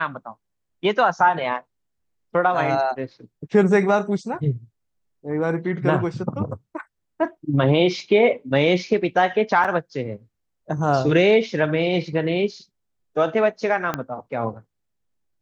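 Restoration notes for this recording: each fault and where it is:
0:09.64–0:09.65: drop-out 6.4 ms
0:13.94: click −10 dBFS

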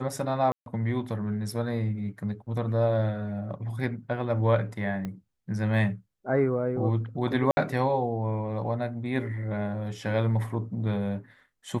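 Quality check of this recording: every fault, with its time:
0:00.52–0:00.66: drop-out 142 ms
0:05.05: click −22 dBFS
0:07.51–0:07.57: drop-out 61 ms

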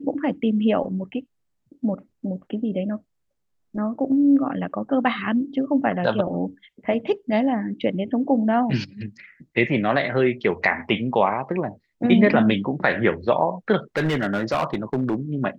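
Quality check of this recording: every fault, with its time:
0:13.97–0:15.15: clipping −17.5 dBFS

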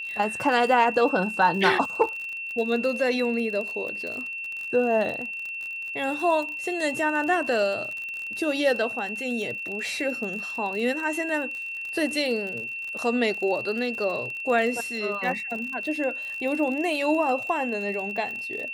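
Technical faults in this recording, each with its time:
surface crackle 41 per second −31 dBFS
whistle 2,700 Hz −31 dBFS

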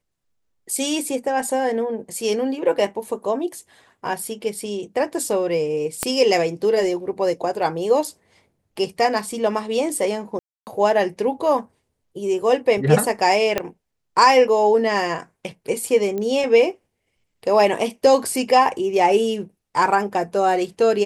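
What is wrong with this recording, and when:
0:06.03: click −6 dBFS
0:10.39–0:10.67: drop-out 279 ms
0:13.58: click −6 dBFS
0:16.18: click −16 dBFS

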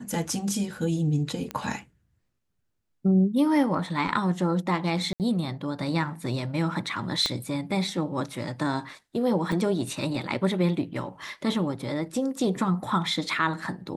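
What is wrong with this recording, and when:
0:01.51: click −17 dBFS
0:05.13–0:05.20: drop-out 68 ms
0:07.26: click −12 dBFS
0:09.52: drop-out 4.1 ms

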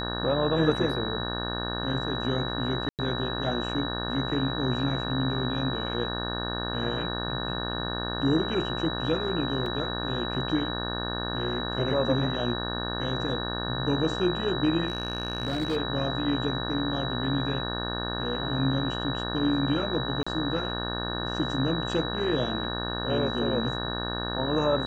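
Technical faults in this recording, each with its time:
mains buzz 60 Hz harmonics 30 −33 dBFS
whistle 3,900 Hz −34 dBFS
0:02.89–0:02.99: drop-out 98 ms
0:09.66: drop-out 2.9 ms
0:14.88–0:15.77: clipping −23 dBFS
0:20.23–0:20.27: drop-out 35 ms

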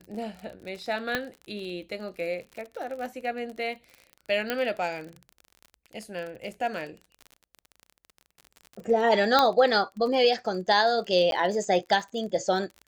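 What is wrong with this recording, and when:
surface crackle 34 per second −35 dBFS
0:01.15: click −12 dBFS
0:04.50: click −13 dBFS
0:09.39: click −7 dBFS
0:11.31–0:11.32: drop-out 12 ms

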